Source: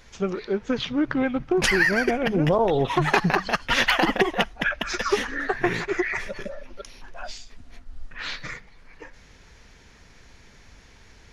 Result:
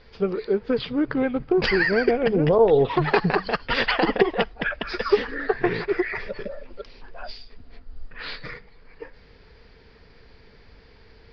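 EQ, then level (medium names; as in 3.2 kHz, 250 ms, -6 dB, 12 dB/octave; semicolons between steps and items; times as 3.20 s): resonant low-pass 4.8 kHz, resonance Q 10; distance through air 410 m; peaking EQ 450 Hz +10 dB 0.33 oct; 0.0 dB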